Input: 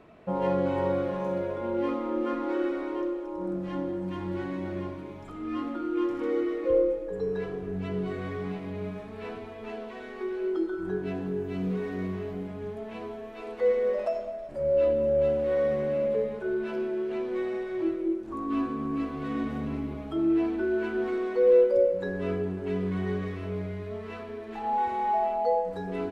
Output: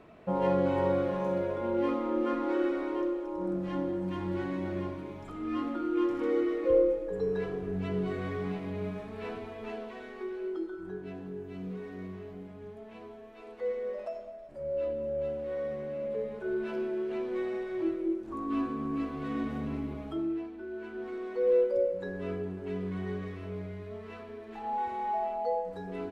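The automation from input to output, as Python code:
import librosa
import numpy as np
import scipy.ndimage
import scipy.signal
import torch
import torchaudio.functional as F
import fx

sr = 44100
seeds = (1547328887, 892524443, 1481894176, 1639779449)

y = fx.gain(x, sr, db=fx.line((9.61, -0.5), (10.93, -9.0), (15.97, -9.0), (16.56, -2.5), (20.09, -2.5), (20.51, -14.5), (21.51, -5.5)))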